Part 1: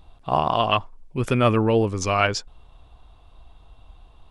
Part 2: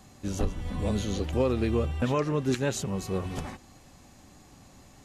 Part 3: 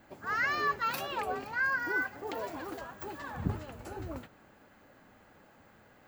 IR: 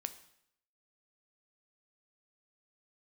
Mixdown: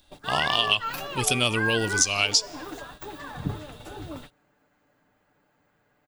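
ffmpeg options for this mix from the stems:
-filter_complex "[0:a]aexciter=amount=12.4:drive=4.7:freq=2600,volume=-8dB,asplit=2[link_01][link_02];[link_02]volume=-9dB[link_03];[1:a]highpass=1000,volume=-19dB[link_04];[2:a]aecho=1:1:6.8:0.47,volume=-1.5dB,asplit=2[link_05][link_06];[link_06]volume=-4.5dB[link_07];[3:a]atrim=start_sample=2205[link_08];[link_03][link_07]amix=inputs=2:normalize=0[link_09];[link_09][link_08]afir=irnorm=-1:irlink=0[link_10];[link_01][link_04][link_05][link_10]amix=inputs=4:normalize=0,agate=range=-11dB:threshold=-44dB:ratio=16:detection=peak,acompressor=threshold=-19dB:ratio=4"

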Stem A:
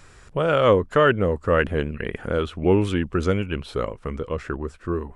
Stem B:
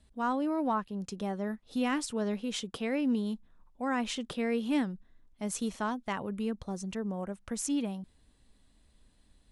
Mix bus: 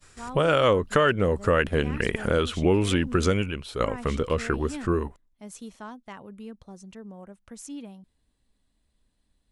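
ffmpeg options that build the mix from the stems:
ffmpeg -i stem1.wav -i stem2.wav -filter_complex "[0:a]agate=range=-33dB:threshold=-46dB:ratio=3:detection=peak,highshelf=frequency=3400:gain=10.5,volume=3dB[link_01];[1:a]volume=-7.5dB,asplit=2[link_02][link_03];[link_03]apad=whole_len=227546[link_04];[link_01][link_04]sidechaingate=range=-9dB:threshold=-59dB:ratio=16:detection=peak[link_05];[link_05][link_02]amix=inputs=2:normalize=0,acompressor=threshold=-19dB:ratio=3" out.wav

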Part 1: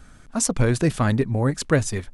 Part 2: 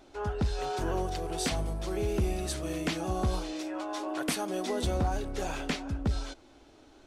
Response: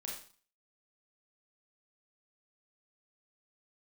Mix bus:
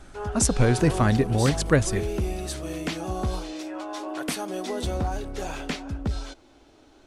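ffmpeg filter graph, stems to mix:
-filter_complex "[0:a]volume=-0.5dB[link_01];[1:a]volume=1.5dB[link_02];[link_01][link_02]amix=inputs=2:normalize=0"

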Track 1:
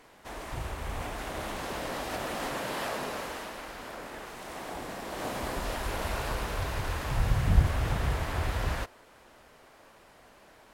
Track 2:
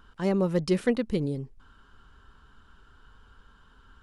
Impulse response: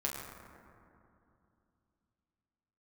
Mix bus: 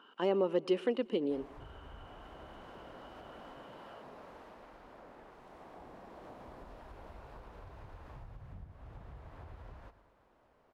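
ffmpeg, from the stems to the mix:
-filter_complex "[0:a]acompressor=threshold=-35dB:ratio=8,adelay=1050,volume=-11.5dB,asplit=2[link_01][link_02];[link_02]volume=-13.5dB[link_03];[1:a]alimiter=limit=-20.5dB:level=0:latency=1:release=322,highpass=frequency=280:width=0.5412,highpass=frequency=280:width=1.3066,equalizer=frequency=2900:width=4.9:gain=14.5,volume=2.5dB,asplit=2[link_04][link_05];[link_05]volume=-21.5dB[link_06];[link_03][link_06]amix=inputs=2:normalize=0,aecho=0:1:116|232|348|464|580|696|812|928:1|0.55|0.303|0.166|0.0915|0.0503|0.0277|0.0152[link_07];[link_01][link_04][link_07]amix=inputs=3:normalize=0,firequalizer=gain_entry='entry(910,0);entry(1800,-7);entry(8100,-18)':delay=0.05:min_phase=1"

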